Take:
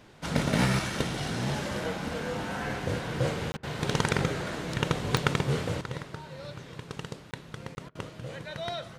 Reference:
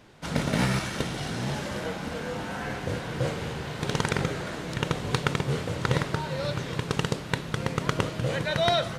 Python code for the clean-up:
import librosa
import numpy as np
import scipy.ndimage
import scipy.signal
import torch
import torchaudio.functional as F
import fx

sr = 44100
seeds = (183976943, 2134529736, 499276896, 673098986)

y = fx.fix_declick_ar(x, sr, threshold=10.0)
y = fx.fix_interpolate(y, sr, at_s=(3.52, 7.31, 7.75), length_ms=20.0)
y = fx.fix_interpolate(y, sr, at_s=(3.57, 7.89), length_ms=60.0)
y = fx.fix_level(y, sr, at_s=5.81, step_db=11.5)